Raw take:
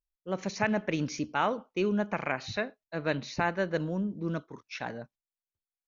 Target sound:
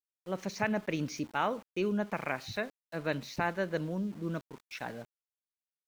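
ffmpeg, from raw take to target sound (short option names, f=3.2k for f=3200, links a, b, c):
-af "aeval=exprs='val(0)*gte(abs(val(0)),0.00447)':c=same,volume=-3dB"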